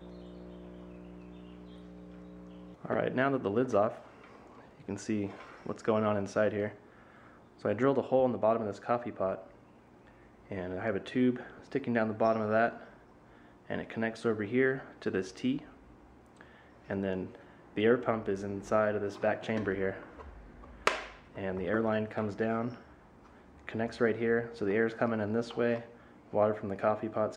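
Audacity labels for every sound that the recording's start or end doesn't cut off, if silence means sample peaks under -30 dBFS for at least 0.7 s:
2.850000	3.890000	sound
4.890000	6.670000	sound
7.650000	9.350000	sound
10.520000	12.690000	sound
13.710000	15.570000	sound
16.900000	19.910000	sound
20.870000	22.680000	sound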